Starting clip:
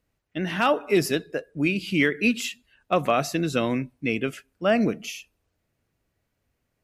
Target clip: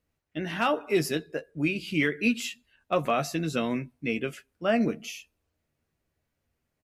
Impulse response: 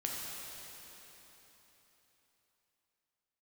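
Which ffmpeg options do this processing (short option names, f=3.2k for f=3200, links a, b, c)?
-filter_complex "[0:a]asplit=2[a][b];[b]adelay=13,volume=-7.5dB[c];[a][c]amix=inputs=2:normalize=0,volume=-4.5dB"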